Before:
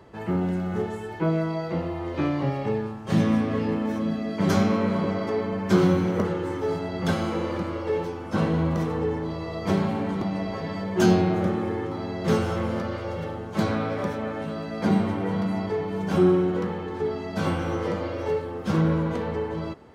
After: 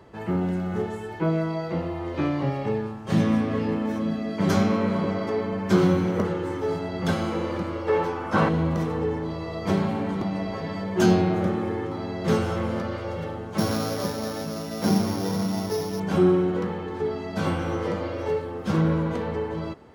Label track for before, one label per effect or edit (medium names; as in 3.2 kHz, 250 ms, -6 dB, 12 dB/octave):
7.880000	8.490000	peaking EQ 1.2 kHz +9.5 dB 2.2 oct
13.580000	16.000000	sorted samples in blocks of 8 samples